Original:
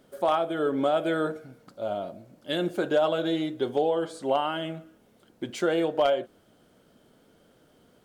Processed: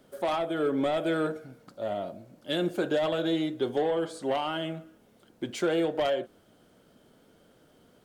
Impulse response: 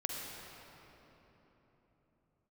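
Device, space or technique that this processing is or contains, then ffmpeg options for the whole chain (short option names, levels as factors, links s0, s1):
one-band saturation: -filter_complex "[0:a]acrossover=split=410|2500[s0][s1][s2];[s1]asoftclip=type=tanh:threshold=0.0473[s3];[s0][s3][s2]amix=inputs=3:normalize=0"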